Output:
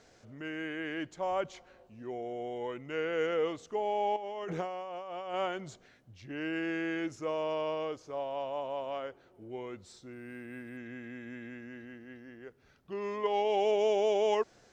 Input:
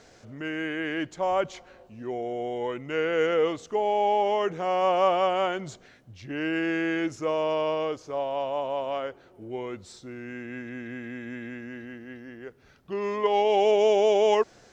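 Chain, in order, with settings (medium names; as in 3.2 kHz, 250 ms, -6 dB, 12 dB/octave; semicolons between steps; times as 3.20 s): 4.16–5.34 s: compressor with a negative ratio -32 dBFS, ratio -1; 10.13–10.77 s: decimation joined by straight lines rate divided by 4×; trim -7 dB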